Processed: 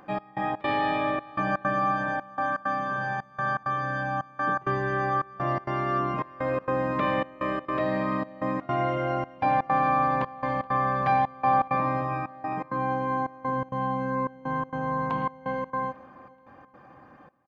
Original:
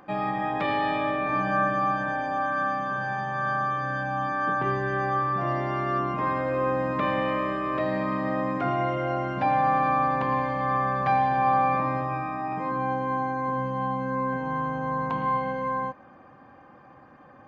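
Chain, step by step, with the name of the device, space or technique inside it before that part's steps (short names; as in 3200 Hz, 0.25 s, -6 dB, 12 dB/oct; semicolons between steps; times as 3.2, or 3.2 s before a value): trance gate with a delay (step gate "xx..xx.xxxx" 164 bpm -24 dB; feedback echo 0.425 s, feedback 43%, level -22.5 dB)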